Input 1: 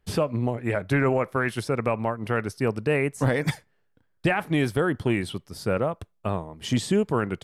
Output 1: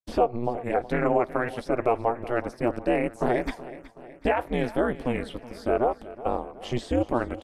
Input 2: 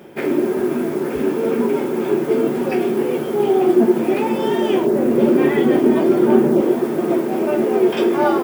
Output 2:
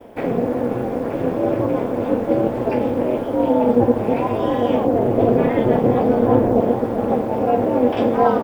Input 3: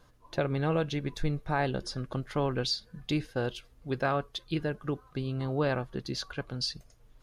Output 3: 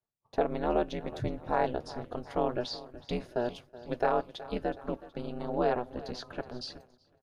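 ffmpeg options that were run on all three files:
-filter_complex "[0:a]acrossover=split=5400[s0][s1];[s1]acompressor=threshold=0.00447:ratio=4:attack=1:release=60[s2];[s0][s2]amix=inputs=2:normalize=0,equalizer=f=630:w=1.1:g=11,asplit=2[s3][s4];[s4]aecho=0:1:371|742|1113|1484|1855:0.141|0.0777|0.0427|0.0235|0.0129[s5];[s3][s5]amix=inputs=2:normalize=0,agate=range=0.0224:threshold=0.0112:ratio=3:detection=peak,aeval=exprs='val(0)*sin(2*PI*120*n/s)':c=same,volume=0.668"

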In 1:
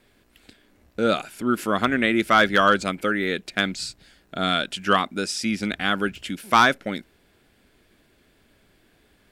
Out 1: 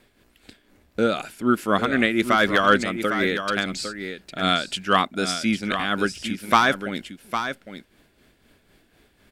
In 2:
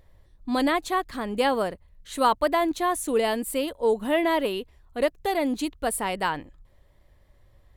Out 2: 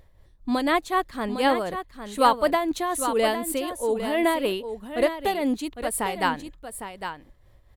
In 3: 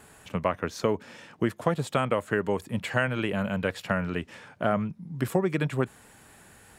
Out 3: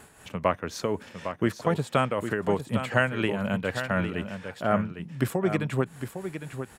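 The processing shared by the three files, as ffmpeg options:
-af "tremolo=f=4:d=0.55,aecho=1:1:806:0.355,volume=1.41"

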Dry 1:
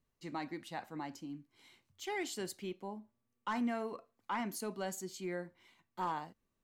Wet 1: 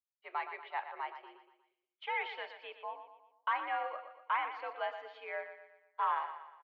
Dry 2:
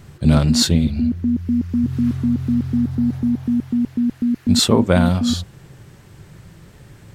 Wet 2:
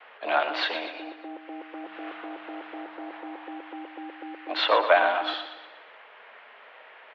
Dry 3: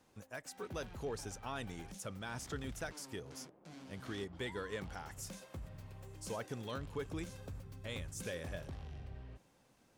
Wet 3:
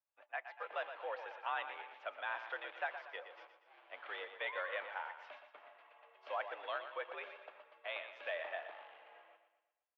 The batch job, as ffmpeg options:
-filter_complex "[0:a]acontrast=76,agate=range=0.0224:threshold=0.0126:ratio=3:detection=peak,asplit=2[s0][s1];[s1]aecho=0:1:119|238|357|476|595:0.316|0.145|0.0669|0.0308|0.0142[s2];[s0][s2]amix=inputs=2:normalize=0,highpass=f=550:t=q:w=0.5412,highpass=f=550:t=q:w=1.307,lowpass=f=3000:t=q:w=0.5176,lowpass=f=3000:t=q:w=0.7071,lowpass=f=3000:t=q:w=1.932,afreqshift=72,volume=0.841"

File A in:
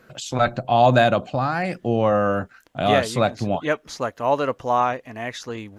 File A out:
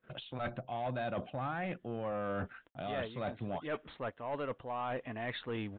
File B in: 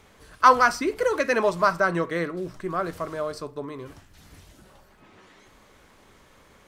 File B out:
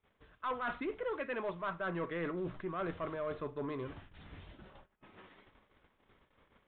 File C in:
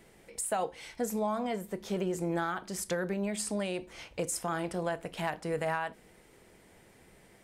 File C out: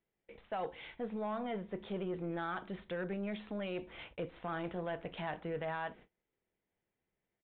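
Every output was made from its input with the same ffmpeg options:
-af "agate=range=0.0398:threshold=0.00251:ratio=16:detection=peak,areverse,acompressor=threshold=0.0282:ratio=8,areverse,aeval=exprs='(tanh(25.1*val(0)+0.1)-tanh(0.1))/25.1':c=same,aresample=8000,aresample=44100,volume=0.841"

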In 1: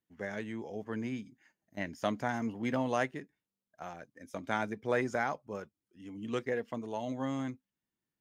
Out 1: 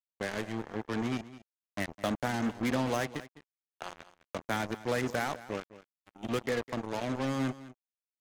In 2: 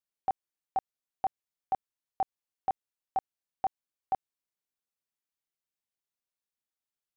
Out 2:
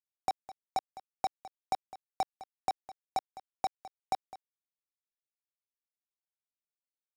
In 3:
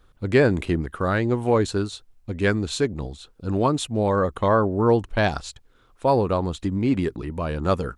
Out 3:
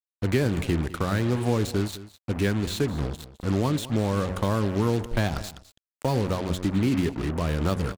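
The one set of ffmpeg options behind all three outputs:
-filter_complex "[0:a]bandreject=f=91.63:t=h:w=4,bandreject=f=183.26:t=h:w=4,bandreject=f=274.89:t=h:w=4,bandreject=f=366.52:t=h:w=4,bandreject=f=458.15:t=h:w=4,bandreject=f=549.78:t=h:w=4,bandreject=f=641.41:t=h:w=4,acrossover=split=270|3400[s0][s1][s2];[s0]acompressor=threshold=0.0501:ratio=4[s3];[s1]acompressor=threshold=0.0224:ratio=4[s4];[s2]acompressor=threshold=0.00708:ratio=4[s5];[s3][s4][s5]amix=inputs=3:normalize=0,acrusher=bits=5:mix=0:aa=0.5,aecho=1:1:208:0.15,volume=1.5"

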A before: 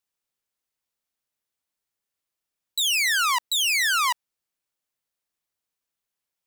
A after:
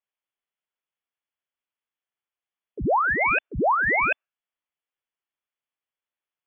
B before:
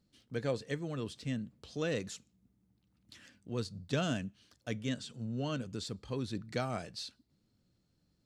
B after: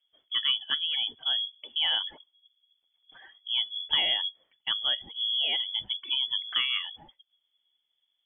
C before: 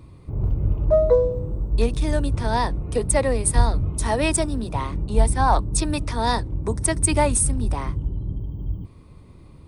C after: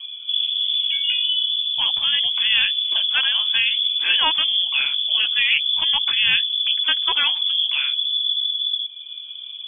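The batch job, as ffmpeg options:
-filter_complex "[0:a]lowpass=f=3000:t=q:w=0.5098,lowpass=f=3000:t=q:w=0.6013,lowpass=f=3000:t=q:w=0.9,lowpass=f=3000:t=q:w=2.563,afreqshift=-3500,afftfilt=real='re*lt(hypot(re,im),0.794)':imag='im*lt(hypot(re,im),0.794)':win_size=1024:overlap=0.75,asplit=2[s0][s1];[s1]acompressor=threshold=0.01:ratio=6,volume=1.41[s2];[s0][s2]amix=inputs=2:normalize=0,afftdn=nr=14:nf=-47,volume=1.5"

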